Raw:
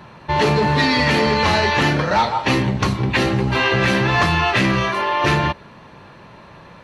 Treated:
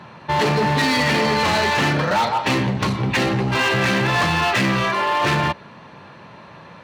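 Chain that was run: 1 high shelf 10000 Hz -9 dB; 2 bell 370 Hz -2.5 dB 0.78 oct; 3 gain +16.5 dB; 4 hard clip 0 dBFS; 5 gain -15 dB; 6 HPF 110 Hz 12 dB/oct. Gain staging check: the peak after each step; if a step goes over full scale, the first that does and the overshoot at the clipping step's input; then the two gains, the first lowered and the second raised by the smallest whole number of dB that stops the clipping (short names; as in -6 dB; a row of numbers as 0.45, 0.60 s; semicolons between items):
-6.0, -6.5, +10.0, 0.0, -15.0, -9.0 dBFS; step 3, 10.0 dB; step 3 +6.5 dB, step 5 -5 dB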